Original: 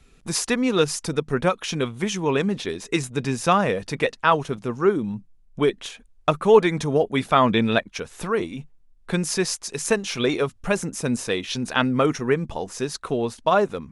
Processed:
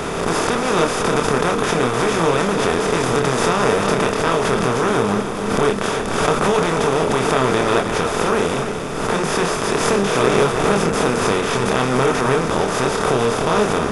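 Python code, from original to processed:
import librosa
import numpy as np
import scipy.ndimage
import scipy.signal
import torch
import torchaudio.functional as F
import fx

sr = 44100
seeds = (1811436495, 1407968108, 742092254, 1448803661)

p1 = fx.bin_compress(x, sr, power=0.2)
p2 = fx.peak_eq(p1, sr, hz=84.0, db=10.0, octaves=1.4)
p3 = fx.chorus_voices(p2, sr, voices=6, hz=0.4, base_ms=27, depth_ms=3.6, mix_pct=40)
p4 = fx.peak_eq(p3, sr, hz=4000.0, db=-2.5, octaves=0.26)
p5 = p4 + fx.echo_single(p4, sr, ms=301, db=-8.5, dry=0)
p6 = fx.pre_swell(p5, sr, db_per_s=36.0)
y = F.gain(torch.from_numpy(p6), -5.5).numpy()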